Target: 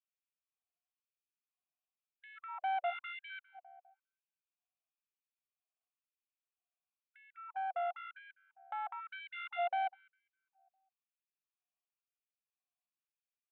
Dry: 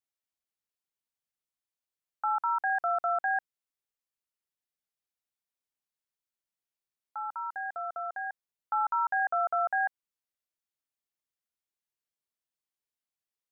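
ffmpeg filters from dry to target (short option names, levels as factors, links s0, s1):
-filter_complex "[0:a]equalizer=f=680:t=o:w=2.5:g=-9,acrossover=split=760[s0][s1];[s0]acontrast=70[s2];[s1]alimiter=level_in=6.68:limit=0.0631:level=0:latency=1,volume=0.15[s3];[s2][s3]amix=inputs=2:normalize=0,asplit=3[s4][s5][s6];[s4]bandpass=f=730:t=q:w=8,volume=1[s7];[s5]bandpass=f=1090:t=q:w=8,volume=0.501[s8];[s6]bandpass=f=2440:t=q:w=8,volume=0.355[s9];[s7][s8][s9]amix=inputs=3:normalize=0,aeval=exprs='(tanh(158*val(0)+0.5)-tanh(0.5))/158':c=same,aresample=8000,aresample=44100,asplit=2[s10][s11];[s11]adelay=202,lowpass=f=1000:p=1,volume=0.178,asplit=2[s12][s13];[s13]adelay=202,lowpass=f=1000:p=1,volume=0.54,asplit=2[s14][s15];[s15]adelay=202,lowpass=f=1000:p=1,volume=0.54,asplit=2[s16][s17];[s17]adelay=202,lowpass=f=1000:p=1,volume=0.54,asplit=2[s18][s19];[s19]adelay=202,lowpass=f=1000:p=1,volume=0.54[s20];[s12][s14][s16][s18][s20]amix=inputs=5:normalize=0[s21];[s10][s21]amix=inputs=2:normalize=0,afftfilt=real='re*gte(b*sr/1024,540*pow(1600/540,0.5+0.5*sin(2*PI*1*pts/sr)))':imag='im*gte(b*sr/1024,540*pow(1600/540,0.5+0.5*sin(2*PI*1*pts/sr)))':win_size=1024:overlap=0.75,volume=4.47"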